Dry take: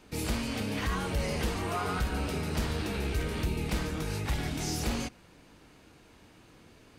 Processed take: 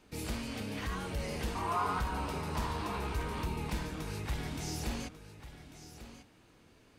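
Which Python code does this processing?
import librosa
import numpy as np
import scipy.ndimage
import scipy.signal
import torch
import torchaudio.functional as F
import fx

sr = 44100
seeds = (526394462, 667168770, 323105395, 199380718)

p1 = fx.peak_eq(x, sr, hz=1000.0, db=14.5, octaves=0.51, at=(1.55, 3.7))
p2 = p1 + fx.echo_single(p1, sr, ms=1144, db=-13.0, dry=0)
y = F.gain(torch.from_numpy(p2), -6.0).numpy()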